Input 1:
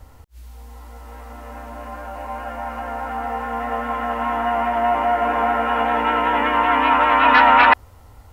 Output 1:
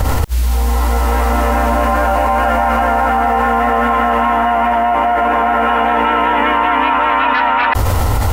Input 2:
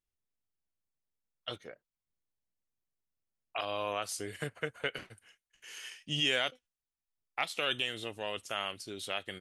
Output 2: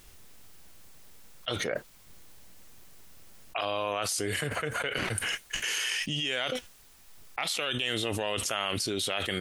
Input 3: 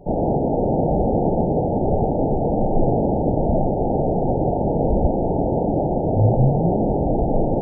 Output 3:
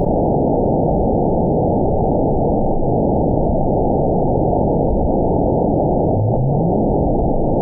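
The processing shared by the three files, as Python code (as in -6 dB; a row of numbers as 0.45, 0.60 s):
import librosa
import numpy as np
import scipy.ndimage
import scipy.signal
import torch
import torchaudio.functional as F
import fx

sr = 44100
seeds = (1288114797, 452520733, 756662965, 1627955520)

y = fx.env_flatten(x, sr, amount_pct=100)
y = y * 10.0 ** (-3.0 / 20.0)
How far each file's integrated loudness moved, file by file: +4.0, +4.5, +3.5 LU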